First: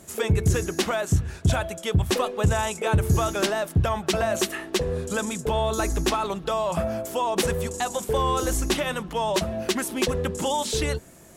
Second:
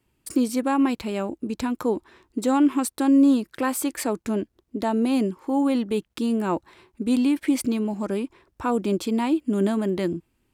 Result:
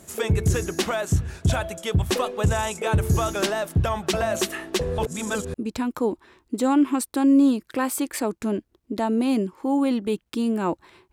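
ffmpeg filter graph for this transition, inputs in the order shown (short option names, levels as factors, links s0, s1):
-filter_complex "[0:a]apad=whole_dur=11.12,atrim=end=11.12,asplit=2[s0][s1];[s0]atrim=end=4.982[s2];[s1]atrim=start=4.978:end=5.542,asetpts=PTS-STARTPTS,areverse[s3];[1:a]atrim=start=1.378:end=6.96[s4];[s2][s3]acrossfade=d=0.004:c1=hsin:c2=hsin[s5];[s5][s4]acrossfade=d=0.004:c1=hsin:c2=hsin"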